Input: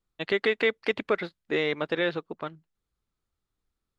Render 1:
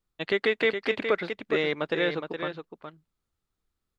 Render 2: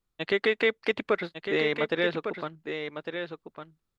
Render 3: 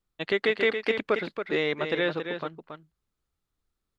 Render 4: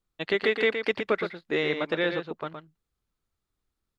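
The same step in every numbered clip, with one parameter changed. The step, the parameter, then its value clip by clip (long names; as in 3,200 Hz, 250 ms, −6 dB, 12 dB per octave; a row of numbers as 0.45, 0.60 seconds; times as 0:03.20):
single-tap delay, delay time: 416, 1,154, 277, 118 milliseconds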